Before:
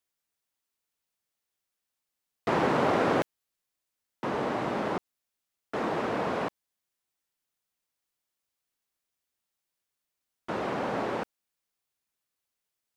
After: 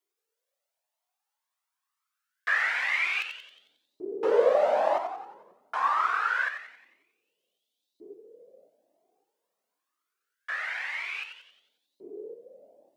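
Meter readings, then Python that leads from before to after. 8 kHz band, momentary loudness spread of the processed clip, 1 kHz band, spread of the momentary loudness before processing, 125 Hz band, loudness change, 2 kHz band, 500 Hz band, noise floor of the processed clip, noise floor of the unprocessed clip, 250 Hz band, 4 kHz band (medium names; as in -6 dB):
no reading, 19 LU, +1.5 dB, 12 LU, under -25 dB, +3.0 dB, +9.0 dB, +2.5 dB, under -85 dBFS, under -85 dBFS, -14.0 dB, +3.0 dB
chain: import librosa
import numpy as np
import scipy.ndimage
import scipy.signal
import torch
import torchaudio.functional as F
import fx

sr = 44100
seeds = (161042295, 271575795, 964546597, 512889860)

y = fx.echo_split(x, sr, split_hz=390.0, low_ms=551, high_ms=90, feedback_pct=52, wet_db=-7.5)
y = fx.filter_lfo_highpass(y, sr, shape='saw_up', hz=0.25, low_hz=380.0, high_hz=4000.0, q=7.4)
y = fx.comb_cascade(y, sr, direction='rising', hz=1.0)
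y = F.gain(torch.from_numpy(y), 2.0).numpy()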